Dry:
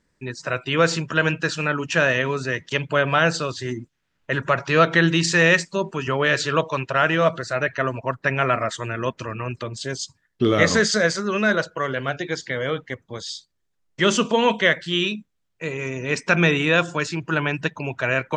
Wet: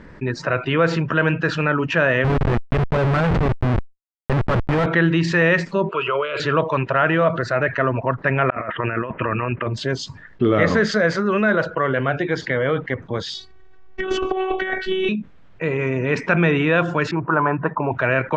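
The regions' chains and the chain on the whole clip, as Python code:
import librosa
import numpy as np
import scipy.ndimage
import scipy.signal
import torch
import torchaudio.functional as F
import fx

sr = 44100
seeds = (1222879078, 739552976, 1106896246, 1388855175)

y = fx.chain(x, sr, fx.peak_eq(hz=66.0, db=15.0, octaves=2.0),
    fx.schmitt(flips_db=-21.5), at=(2.24, 4.86))
y = fx.chain(y, sr, fx.weighting(curve='A'),
    fx.over_compress(threshold_db=-26.0, ratio=-1.0),
    fx.fixed_phaser(hz=1200.0, stages=8), at=(5.89, 6.4))
y = fx.chain(y, sr, fx.tilt_eq(slope=1.5),
    fx.over_compress(threshold_db=-32.0, ratio=-0.5),
    fx.steep_lowpass(hz=2900.0, slope=72), at=(8.5, 9.67))
y = fx.chain(y, sr, fx.robotise(hz=377.0),
    fx.high_shelf(hz=4500.0, db=-5.0),
    fx.over_compress(threshold_db=-26.0, ratio=-0.5), at=(13.34, 15.09))
y = fx.chain(y, sr, fx.lowpass_res(hz=1100.0, q=3.0),
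    fx.low_shelf(hz=130.0, db=-9.0), at=(17.11, 17.92))
y = scipy.signal.sosfilt(scipy.signal.butter(2, 2000.0, 'lowpass', fs=sr, output='sos'), y)
y = fx.env_flatten(y, sr, amount_pct=50)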